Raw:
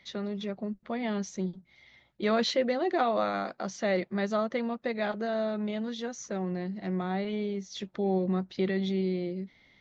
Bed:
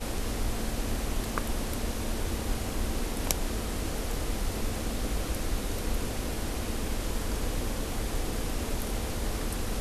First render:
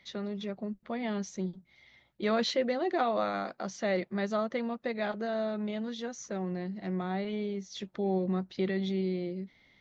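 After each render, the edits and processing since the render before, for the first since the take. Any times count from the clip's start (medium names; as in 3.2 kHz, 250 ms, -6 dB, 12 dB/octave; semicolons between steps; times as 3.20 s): trim -2 dB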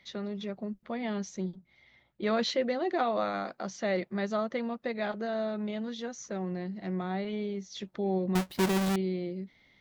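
1.55–2.27 s: treble shelf 4.3 kHz -9 dB; 8.35–8.96 s: square wave that keeps the level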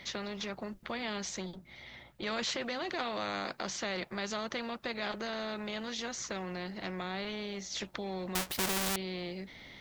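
in parallel at +1 dB: peak limiter -28.5 dBFS, peak gain reduction 11 dB; on the sum: spectrum-flattening compressor 2:1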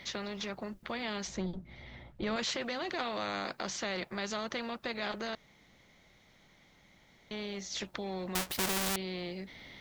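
1.27–2.36 s: tilt EQ -2.5 dB/octave; 5.35–7.31 s: room tone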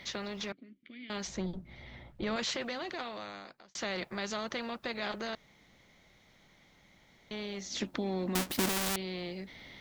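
0.52–1.10 s: vowel filter i; 2.58–3.75 s: fade out; 7.66–8.69 s: peaking EQ 260 Hz +13 dB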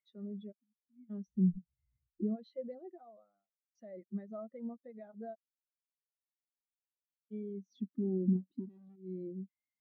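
compression 10:1, threshold -35 dBFS, peak gain reduction 10.5 dB; spectral contrast expander 4:1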